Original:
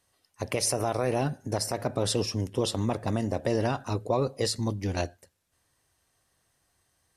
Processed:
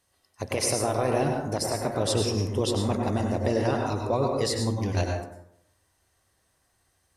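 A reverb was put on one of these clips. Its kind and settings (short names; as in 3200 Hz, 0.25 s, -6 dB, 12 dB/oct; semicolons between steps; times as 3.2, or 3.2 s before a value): plate-style reverb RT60 0.75 s, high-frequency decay 0.45×, pre-delay 85 ms, DRR 1 dB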